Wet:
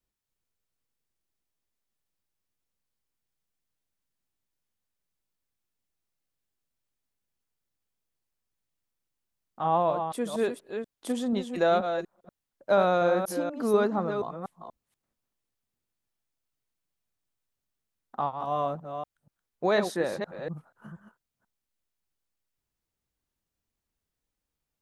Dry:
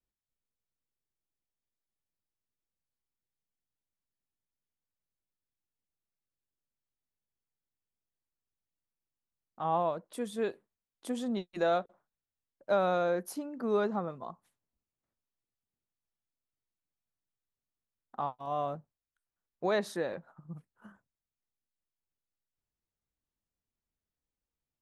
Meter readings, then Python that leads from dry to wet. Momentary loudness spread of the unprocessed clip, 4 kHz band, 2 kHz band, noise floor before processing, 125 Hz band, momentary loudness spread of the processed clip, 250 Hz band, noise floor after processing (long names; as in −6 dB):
18 LU, +6.0 dB, +6.0 dB, below −85 dBFS, +6.0 dB, 15 LU, +6.0 dB, below −85 dBFS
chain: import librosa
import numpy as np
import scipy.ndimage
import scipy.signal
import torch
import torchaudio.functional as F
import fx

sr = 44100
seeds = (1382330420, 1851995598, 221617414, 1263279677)

y = fx.reverse_delay(x, sr, ms=241, wet_db=-7)
y = y * librosa.db_to_amplitude(5.0)